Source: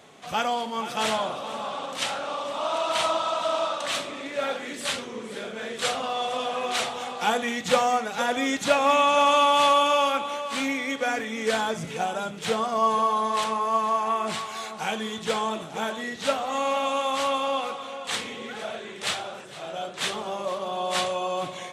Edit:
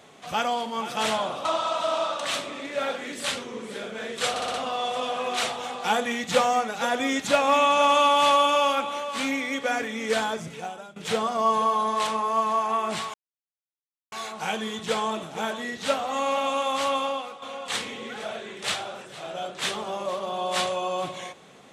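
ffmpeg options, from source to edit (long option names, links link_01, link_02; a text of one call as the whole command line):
ffmpeg -i in.wav -filter_complex "[0:a]asplit=9[link_01][link_02][link_03][link_04][link_05][link_06][link_07][link_08][link_09];[link_01]atrim=end=1.452[link_10];[link_02]atrim=start=3.058:end=5.972[link_11];[link_03]atrim=start=5.908:end=5.972[link_12];[link_04]atrim=start=5.908:end=5.972[link_13];[link_05]atrim=start=5.908:end=5.972[link_14];[link_06]atrim=start=5.908:end=12.33,asetpts=PTS-STARTPTS,afade=type=out:start_time=5.622:duration=0.8:silence=0.112202[link_15];[link_07]atrim=start=12.33:end=14.51,asetpts=PTS-STARTPTS,afade=type=in:duration=0.004:curve=hsin:silence=0.112202,afade=type=out:start_time=2.176:duration=0.004:curve=hsin,apad=pad_dur=0.98[link_16];[link_08]atrim=start=14.51:end=17.81,asetpts=PTS-STARTPTS,afade=type=in:duration=0.004:curve=hsin,afade=type=out:start_time=2.92:duration=0.38:curve=qua:silence=0.354813[link_17];[link_09]atrim=start=17.81,asetpts=PTS-STARTPTS,afade=type=in:duration=0.004:curve=hsin:silence=0.354813[link_18];[link_10][link_11]acrossfade=duration=0.004:curve1=hsin:curve2=hsin[link_19];[link_19][link_12]acrossfade=duration=0.004:curve1=hsin:curve2=hsin[link_20];[link_20][link_13]acrossfade=duration=0.004:curve1=hsin:curve2=hsin[link_21];[link_21][link_14]acrossfade=duration=0.004:curve1=hsin:curve2=hsin[link_22];[link_15][link_16][link_17][link_18]concat=n=4:v=0:a=1[link_23];[link_22][link_23]acrossfade=duration=0.004:curve1=hsin:curve2=hsin" out.wav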